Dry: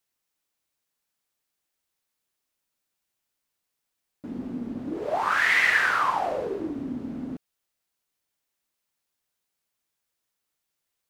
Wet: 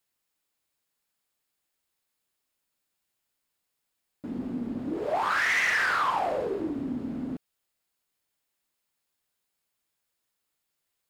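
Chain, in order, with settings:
notch filter 5,900 Hz, Q 12
in parallel at +0.5 dB: brickwall limiter −16 dBFS, peak gain reduction 7.5 dB
on the sum: soft clipping −14 dBFS, distortion −15 dB
level −5.5 dB

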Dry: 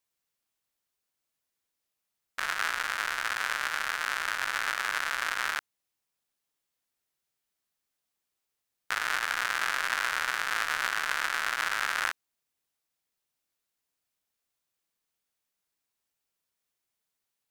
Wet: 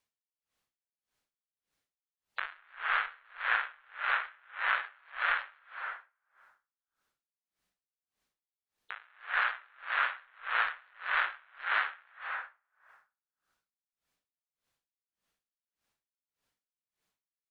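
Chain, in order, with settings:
low-pass filter 3,500 Hz 6 dB per octave
gate on every frequency bin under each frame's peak −20 dB strong
parametric band 590 Hz −2.5 dB 2.8 octaves
in parallel at −2 dB: compressor whose output falls as the input rises −35 dBFS, ratio −0.5
on the sum: brickwall limiter −15.5 dBFS, peak gain reduction 5 dB
on a send: repeating echo 224 ms, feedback 45%, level −20.5 dB
on the sum: dense smooth reverb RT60 1.5 s, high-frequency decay 0.5×, pre-delay 120 ms, DRR 0 dB
tremolo with a sine in dB 1.7 Hz, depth 36 dB

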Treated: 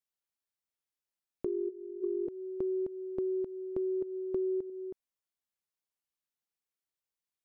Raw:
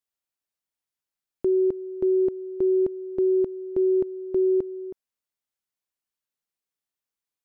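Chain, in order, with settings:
0:01.45–0:02.28: three sine waves on the formant tracks
0:04.01–0:04.70: dynamic equaliser 390 Hz, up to +5 dB, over −36 dBFS, Q 3.3
downward compressor 6 to 1, threshold −26 dBFS, peak gain reduction 10.5 dB
level −5 dB

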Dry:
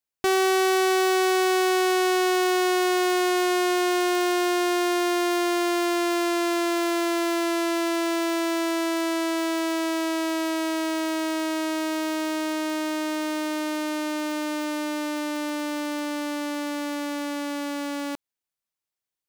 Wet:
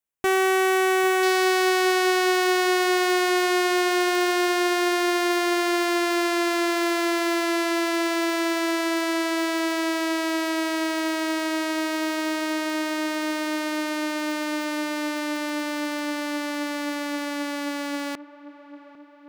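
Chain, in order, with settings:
parametric band 4,600 Hz −8.5 dB 0.6 octaves, from 0:01.23 +3 dB
delay with a low-pass on its return 800 ms, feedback 60%, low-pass 1,900 Hz, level −16 dB
dynamic equaliser 1,900 Hz, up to +5 dB, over −40 dBFS, Q 1.7

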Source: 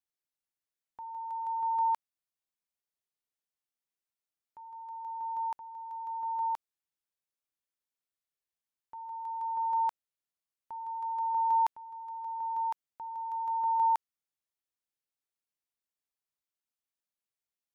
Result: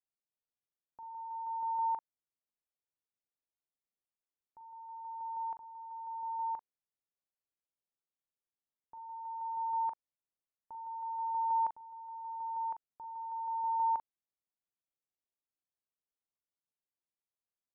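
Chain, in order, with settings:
low-pass filter 1,000 Hz 12 dB per octave
double-tracking delay 41 ms −9 dB
level −3.5 dB

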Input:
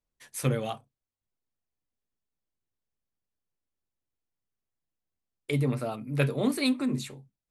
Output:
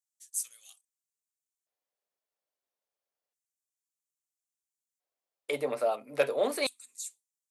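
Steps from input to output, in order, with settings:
soft clipping −17 dBFS, distortion −21 dB
auto-filter high-pass square 0.3 Hz 570–7,200 Hz

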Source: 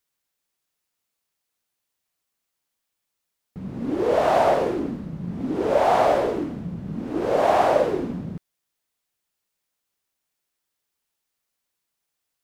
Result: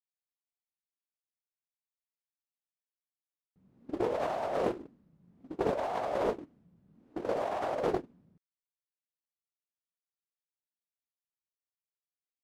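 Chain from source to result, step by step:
noise gate −22 dBFS, range −31 dB
compressor whose output falls as the input rises −25 dBFS, ratio −1
highs frequency-modulated by the lows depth 0.6 ms
level −6.5 dB

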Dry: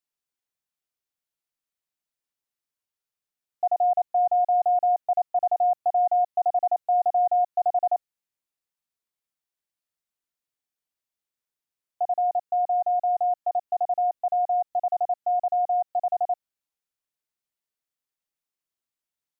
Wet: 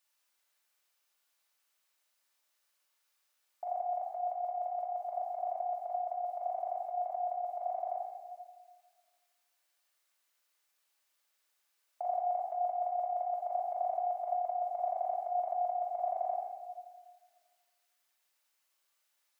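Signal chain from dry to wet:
high-pass filter 650 Hz 12 dB per octave
compressor whose output falls as the input rises −33 dBFS, ratio −1
rectangular room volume 1,700 cubic metres, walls mixed, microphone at 2.5 metres

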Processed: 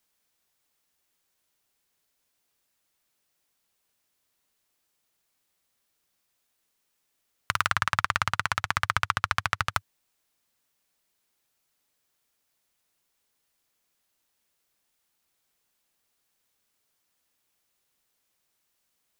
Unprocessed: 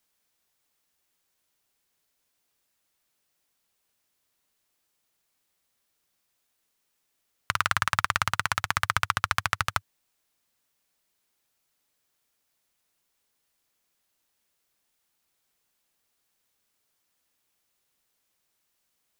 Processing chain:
0:07.71–0:09.74: high-shelf EQ 8,400 Hz −10 dB

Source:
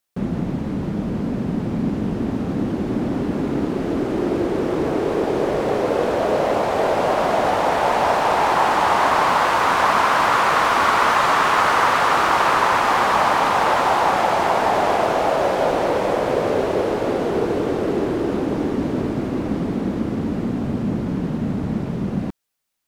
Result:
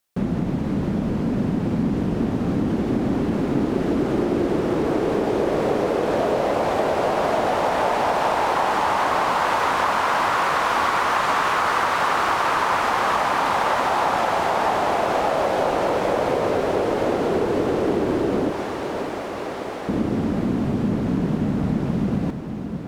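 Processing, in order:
0:18.50–0:19.89: inverse Chebyshev high-pass filter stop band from 280 Hz, stop band 40 dB
downward compressor, threshold −20 dBFS, peak gain reduction 8 dB
feedback delay with all-pass diffusion 594 ms, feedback 68%, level −9.5 dB
level +2 dB

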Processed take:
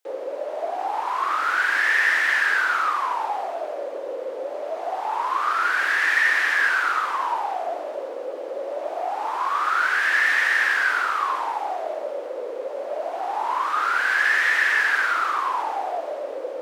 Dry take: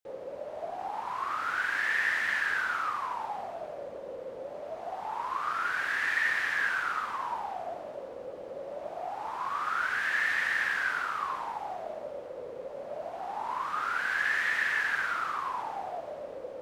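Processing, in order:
Butterworth high-pass 290 Hz 48 dB per octave
in parallel at −7 dB: soft clipping −30 dBFS, distortion −11 dB
on the sum: level +7 dB

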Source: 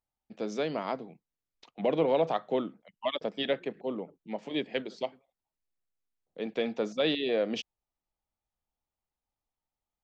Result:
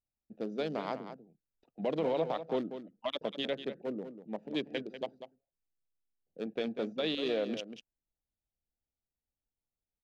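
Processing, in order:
adaptive Wiener filter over 41 samples
dynamic equaliser 5,400 Hz, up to +4 dB, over −51 dBFS, Q 0.91
brickwall limiter −21.5 dBFS, peak gain reduction 6 dB
on a send: single-tap delay 193 ms −10.5 dB
on the sum: level −1.5 dB

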